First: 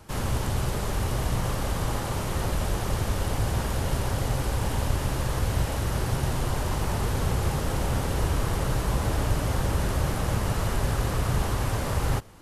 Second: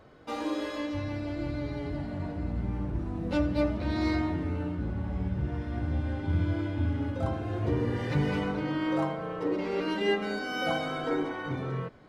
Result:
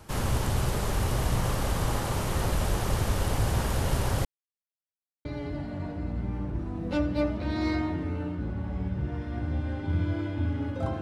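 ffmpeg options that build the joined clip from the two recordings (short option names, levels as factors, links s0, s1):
-filter_complex "[0:a]apad=whole_dur=11.01,atrim=end=11.01,asplit=2[s0][s1];[s0]atrim=end=4.25,asetpts=PTS-STARTPTS,afade=t=out:st=4.246:d=0.004:c=hsin[s2];[s1]atrim=start=4.25:end=5.25,asetpts=PTS-STARTPTS,volume=0[s3];[1:a]atrim=start=1.65:end=7.41,asetpts=PTS-STARTPTS,afade=t=in:d=0.004:c=hsin[s4];[s2][s3][s4]concat=n=3:v=0:a=1"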